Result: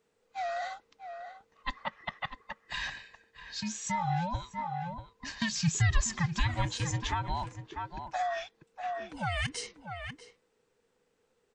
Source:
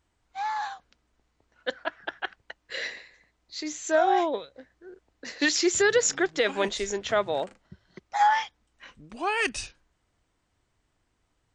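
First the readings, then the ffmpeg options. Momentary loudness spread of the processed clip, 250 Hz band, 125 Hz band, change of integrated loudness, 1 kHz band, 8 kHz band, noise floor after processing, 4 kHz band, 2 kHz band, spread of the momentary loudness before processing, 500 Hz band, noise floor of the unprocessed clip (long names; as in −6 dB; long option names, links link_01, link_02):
15 LU, −5.0 dB, +18.0 dB, −7.5 dB, −6.5 dB, −6.5 dB, −75 dBFS, −5.5 dB, −7.5 dB, 18 LU, −14.5 dB, −74 dBFS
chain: -filter_complex "[0:a]afftfilt=real='real(if(between(b,1,1008),(2*floor((b-1)/24)+1)*24-b,b),0)':imag='imag(if(between(b,1,1008),(2*floor((b-1)/24)+1)*24-b,b),0)*if(between(b,1,1008),-1,1)':win_size=2048:overlap=0.75,asplit=2[link_01][link_02];[link_02]adelay=641.4,volume=-11dB,highshelf=frequency=4000:gain=-14.4[link_03];[link_01][link_03]amix=inputs=2:normalize=0,acrossover=split=160[link_04][link_05];[link_05]acompressor=threshold=-30dB:ratio=4[link_06];[link_04][link_06]amix=inputs=2:normalize=0,volume=-1.5dB"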